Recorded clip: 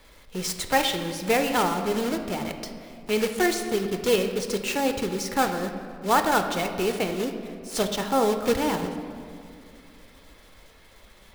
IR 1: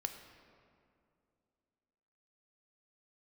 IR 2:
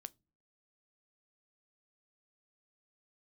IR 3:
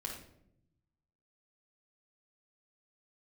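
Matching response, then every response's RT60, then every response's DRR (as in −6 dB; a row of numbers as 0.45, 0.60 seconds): 1; 2.5 s, non-exponential decay, 0.75 s; 6.0, 15.5, −1.0 decibels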